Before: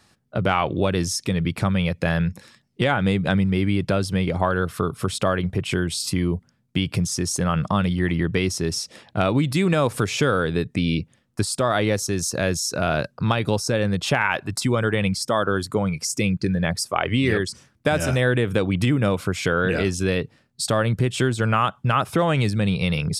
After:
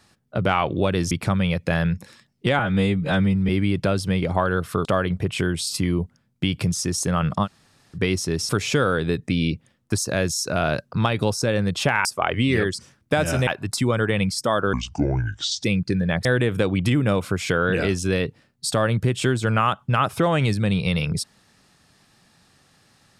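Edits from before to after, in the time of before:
0:01.11–0:01.46: remove
0:02.94–0:03.54: time-stretch 1.5×
0:04.90–0:05.18: remove
0:07.78–0:08.29: fill with room tone, crossfade 0.06 s
0:08.82–0:09.96: remove
0:11.45–0:12.24: remove
0:15.57–0:16.18: play speed 67%
0:16.79–0:18.21: move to 0:14.31

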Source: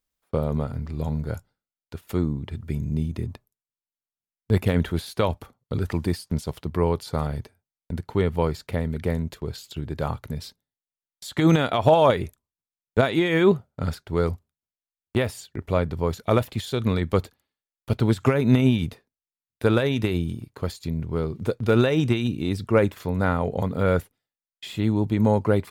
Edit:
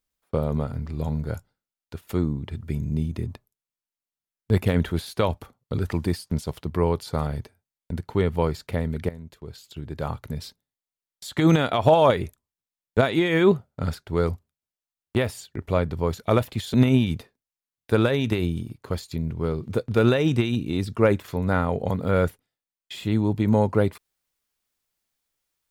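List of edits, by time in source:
0:09.09–0:10.38: fade in, from −16.5 dB
0:16.74–0:18.46: remove

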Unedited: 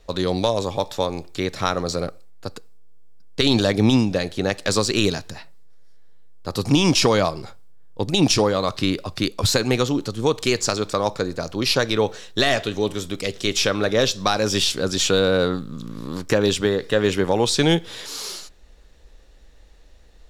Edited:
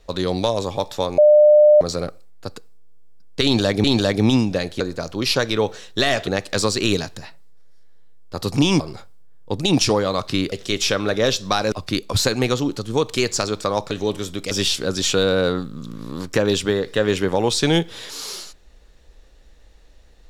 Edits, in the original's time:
0:01.18–0:01.81: beep over 600 Hz −7.5 dBFS
0:03.44–0:03.84: repeat, 2 plays
0:06.93–0:07.29: remove
0:11.20–0:12.67: move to 0:04.40
0:13.27–0:14.47: move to 0:09.01

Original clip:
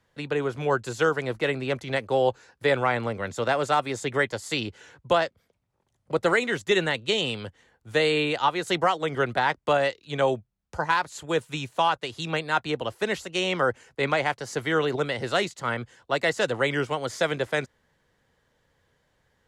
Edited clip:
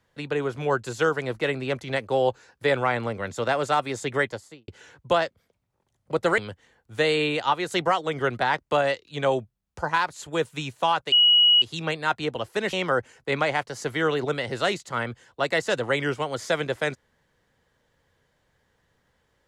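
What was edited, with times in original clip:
0:04.20–0:04.68: fade out and dull
0:06.38–0:07.34: remove
0:12.08: insert tone 2,910 Hz −13.5 dBFS 0.50 s
0:13.19–0:13.44: remove

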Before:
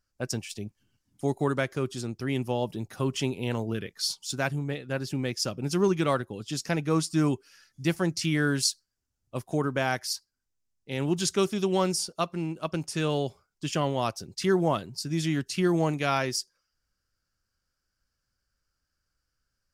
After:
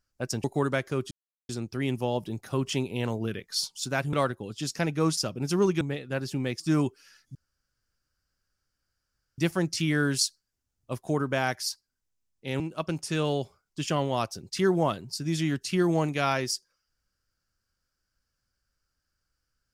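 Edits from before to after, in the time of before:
0:00.44–0:01.29: remove
0:01.96: splice in silence 0.38 s
0:04.60–0:05.39: swap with 0:06.03–0:07.07
0:07.82: splice in room tone 2.03 s
0:11.04–0:12.45: remove

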